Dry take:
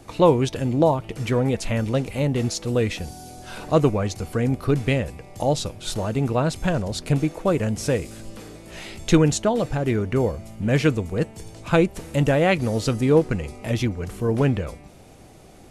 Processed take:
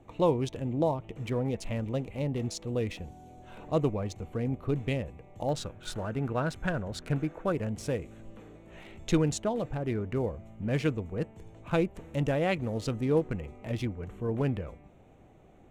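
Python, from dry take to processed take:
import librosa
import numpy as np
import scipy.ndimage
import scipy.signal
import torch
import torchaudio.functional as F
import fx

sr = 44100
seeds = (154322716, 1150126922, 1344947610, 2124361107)

y = fx.wiener(x, sr, points=9)
y = fx.peak_eq(y, sr, hz=1500.0, db=fx.steps((0.0, -6.5), (5.49, 8.0), (7.52, -2.0)), octaves=0.54)
y = y * 10.0 ** (-9.0 / 20.0)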